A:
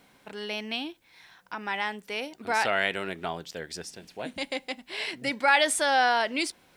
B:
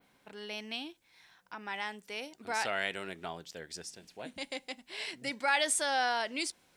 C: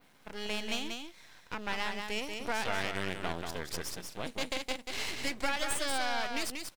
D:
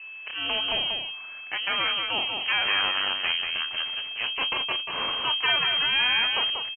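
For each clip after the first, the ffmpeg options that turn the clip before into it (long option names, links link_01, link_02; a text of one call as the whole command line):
ffmpeg -i in.wav -af "adynamicequalizer=threshold=0.00501:dfrequency=7300:dqfactor=0.79:tfrequency=7300:tqfactor=0.79:attack=5:release=100:ratio=0.375:range=3.5:mode=boostabove:tftype=bell,volume=-8dB" out.wav
ffmpeg -i in.wav -filter_complex "[0:a]acompressor=threshold=-36dB:ratio=6,aeval=exprs='max(val(0),0)':channel_layout=same,asplit=2[link_01][link_02];[link_02]aecho=0:1:187:0.562[link_03];[link_01][link_03]amix=inputs=2:normalize=0,volume=8.5dB" out.wav
ffmpeg -i in.wav -filter_complex "[0:a]aeval=exprs='val(0)+0.00447*sin(2*PI*580*n/s)':channel_layout=same,asplit=2[link_01][link_02];[link_02]adelay=24,volume=-13dB[link_03];[link_01][link_03]amix=inputs=2:normalize=0,lowpass=frequency=2700:width_type=q:width=0.5098,lowpass=frequency=2700:width_type=q:width=0.6013,lowpass=frequency=2700:width_type=q:width=0.9,lowpass=frequency=2700:width_type=q:width=2.563,afreqshift=-3200,volume=7.5dB" out.wav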